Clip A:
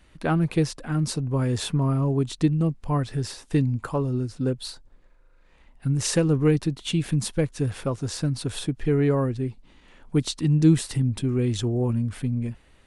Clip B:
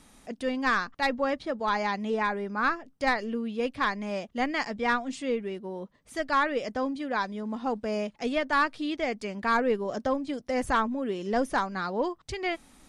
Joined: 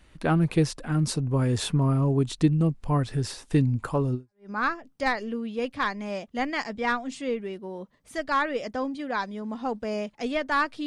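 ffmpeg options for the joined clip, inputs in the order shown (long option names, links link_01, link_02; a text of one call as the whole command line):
ffmpeg -i cue0.wav -i cue1.wav -filter_complex "[0:a]apad=whole_dur=10.86,atrim=end=10.86,atrim=end=4.5,asetpts=PTS-STARTPTS[link_01];[1:a]atrim=start=2.15:end=8.87,asetpts=PTS-STARTPTS[link_02];[link_01][link_02]acrossfade=duration=0.36:curve1=exp:curve2=exp" out.wav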